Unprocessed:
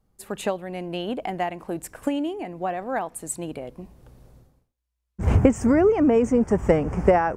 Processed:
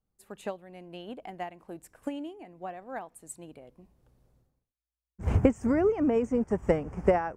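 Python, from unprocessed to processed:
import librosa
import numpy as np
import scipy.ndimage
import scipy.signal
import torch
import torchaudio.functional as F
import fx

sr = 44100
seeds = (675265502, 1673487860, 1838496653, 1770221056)

y = fx.upward_expand(x, sr, threshold_db=-33.0, expansion=1.5)
y = y * librosa.db_to_amplitude(-4.5)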